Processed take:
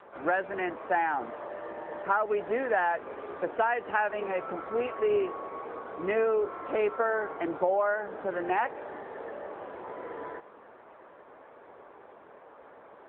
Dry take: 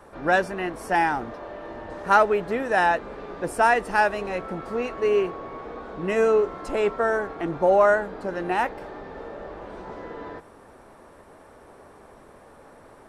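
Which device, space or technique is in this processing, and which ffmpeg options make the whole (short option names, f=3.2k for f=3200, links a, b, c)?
voicemail: -af "highpass=350,lowpass=2.9k,acompressor=threshold=-22dB:ratio=10" -ar 8000 -c:a libopencore_amrnb -b:a 7950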